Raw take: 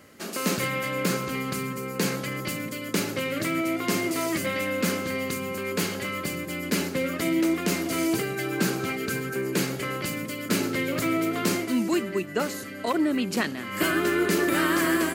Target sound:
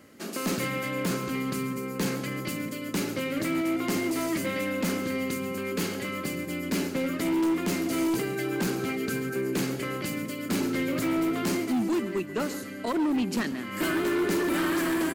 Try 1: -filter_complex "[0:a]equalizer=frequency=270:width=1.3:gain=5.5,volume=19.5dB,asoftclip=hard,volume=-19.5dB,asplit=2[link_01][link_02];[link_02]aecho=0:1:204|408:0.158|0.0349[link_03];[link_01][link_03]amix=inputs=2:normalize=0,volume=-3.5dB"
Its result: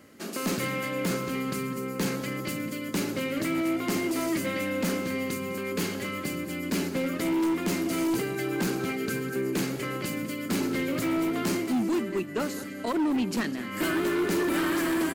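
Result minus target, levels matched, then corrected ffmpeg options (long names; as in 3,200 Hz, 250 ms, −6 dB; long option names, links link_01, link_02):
echo 66 ms late
-filter_complex "[0:a]equalizer=frequency=270:width=1.3:gain=5.5,volume=19.5dB,asoftclip=hard,volume=-19.5dB,asplit=2[link_01][link_02];[link_02]aecho=0:1:138|276:0.158|0.0349[link_03];[link_01][link_03]amix=inputs=2:normalize=0,volume=-3.5dB"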